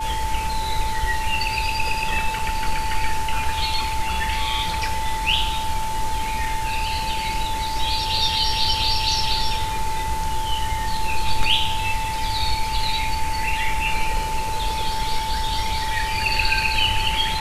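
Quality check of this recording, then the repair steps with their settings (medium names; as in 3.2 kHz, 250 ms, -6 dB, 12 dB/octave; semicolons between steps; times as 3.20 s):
whine 880 Hz -25 dBFS
2.39 s: dropout 3.1 ms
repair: band-stop 880 Hz, Q 30; interpolate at 2.39 s, 3.1 ms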